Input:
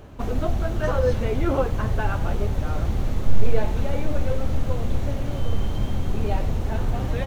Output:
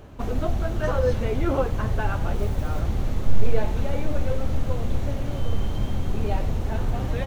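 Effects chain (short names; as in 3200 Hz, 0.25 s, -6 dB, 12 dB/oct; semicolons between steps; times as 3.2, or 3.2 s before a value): 2.35–2.81 modulation noise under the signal 32 dB; gain -1 dB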